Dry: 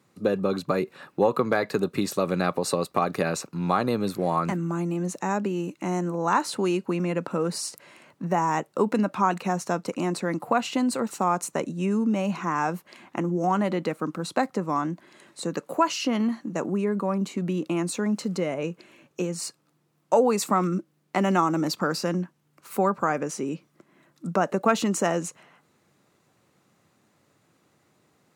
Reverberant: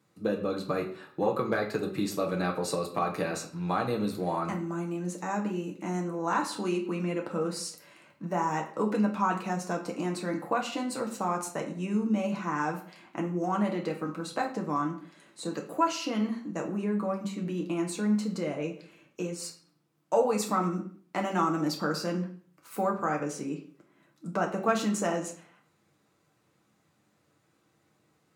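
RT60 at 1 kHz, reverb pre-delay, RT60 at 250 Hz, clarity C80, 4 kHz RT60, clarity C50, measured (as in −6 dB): 0.50 s, 6 ms, 0.55 s, 13.5 dB, 0.45 s, 9.5 dB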